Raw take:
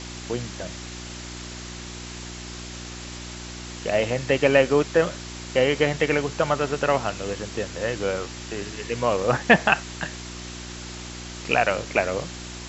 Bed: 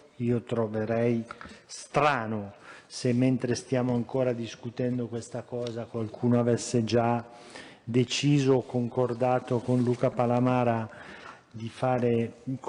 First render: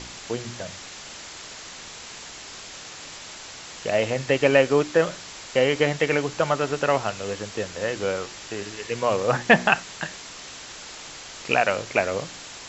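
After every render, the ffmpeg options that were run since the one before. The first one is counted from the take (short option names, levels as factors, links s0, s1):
-af "bandreject=f=60:t=h:w=4,bandreject=f=120:t=h:w=4,bandreject=f=180:t=h:w=4,bandreject=f=240:t=h:w=4,bandreject=f=300:t=h:w=4,bandreject=f=360:t=h:w=4"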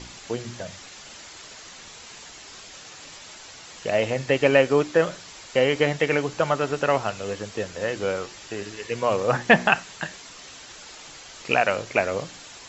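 -af "afftdn=nr=6:nf=-41"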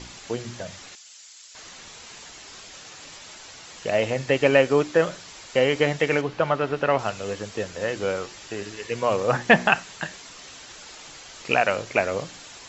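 -filter_complex "[0:a]asettb=1/sr,asplit=3[s0][s1][s2];[s0]atrim=end=0.954[s3];[s1]atrim=start=0.95:end=1.55,asetpts=PTS-STARTPTS,afade=t=in:d=0.004:c=qsin,afade=t=out:st=0.596:d=0.004:c=qsin,aderivative[s4];[s2]atrim=start=1.546[s5];[s3][s4]acrossfade=d=0.004:c1=hsin:c2=qsin[s6];[s6][s5]acrossfade=d=0.004:c1=qsin:c2=hsin,asettb=1/sr,asplit=3[s7][s8][s9];[s7]atrim=end=6.214[s10];[s8]atrim=start=6.21:end=6.99,asetpts=PTS-STARTPTS,afade=t=in:d=0.004:c=qsin,afade=t=out:st=0.776:d=0.004:c=qsin,lowpass=3600[s11];[s9]atrim=start=6.986[s12];[s10][s11]acrossfade=d=0.004:c1=hsin:c2=qsin[s13];[s13][s12]acrossfade=d=0.004:c1=qsin:c2=hsin"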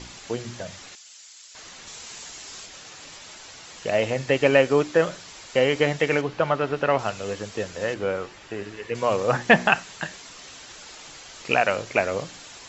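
-filter_complex "[0:a]asettb=1/sr,asplit=3[s0][s1][s2];[s0]atrim=end=1.874[s3];[s1]atrim=start=1.87:end=2.66,asetpts=PTS-STARTPTS,afade=t=in:d=0.004:c=qsin,afade=t=out:st=0.786:d=0.004:c=qsin,highshelf=f=6200:g=9.5[s4];[s2]atrim=start=2.656[s5];[s3][s4]acrossfade=d=0.004:c1=hsin:c2=qsin[s6];[s6][s5]acrossfade=d=0.004:c1=qsin:c2=hsin,asettb=1/sr,asplit=3[s7][s8][s9];[s7]atrim=end=7.944[s10];[s8]atrim=start=7.94:end=8.95,asetpts=PTS-STARTPTS,afade=t=in:d=0.004:c=qsin,afade=t=out:st=1.006:d=0.004:c=qsin,acrossover=split=3000[s11][s12];[s12]acompressor=threshold=0.00224:ratio=4:attack=1:release=60[s13];[s11][s13]amix=inputs=2:normalize=0[s14];[s9]atrim=start=8.946[s15];[s10][s14]acrossfade=d=0.004:c1=hsin:c2=qsin[s16];[s16][s15]acrossfade=d=0.004:c1=qsin:c2=hsin"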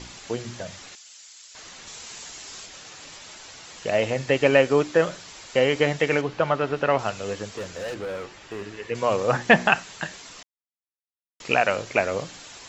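-filter_complex "[0:a]asettb=1/sr,asplit=3[s0][s1][s2];[s0]atrim=end=7.494[s3];[s1]atrim=start=7.49:end=8.72,asetpts=PTS-STARTPTS,afade=t=in:d=0.004:c=qsin,afade=t=out:st=1.226:d=0.004:c=qsin,volume=26.6,asoftclip=hard,volume=0.0376[s4];[s2]atrim=start=8.716[s5];[s3][s4]acrossfade=d=0.004:c1=hsin:c2=qsin[s6];[s6][s5]acrossfade=d=0.004:c1=qsin:c2=hsin,asplit=3[s7][s8][s9];[s7]atrim=end=10.43,asetpts=PTS-STARTPTS,afade=t=out:st=10.426:d=0.004:c=hsin[s10];[s8]atrim=start=10.43:end=11.4,asetpts=PTS-STARTPTS,volume=0[s11];[s9]atrim=start=11.4,asetpts=PTS-STARTPTS,afade=t=in:d=0.004:c=hsin[s12];[s10][s11][s12]concat=n=3:v=0:a=1"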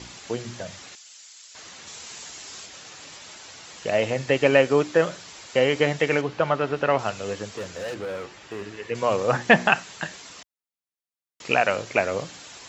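-af "highpass=62"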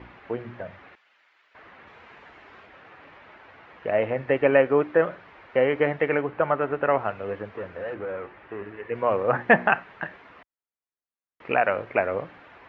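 -af "lowpass=f=2100:w=0.5412,lowpass=f=2100:w=1.3066,equalizer=f=150:t=o:w=1.3:g=-5"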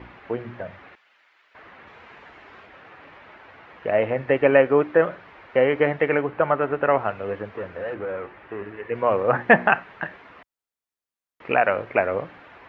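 -af "volume=1.33"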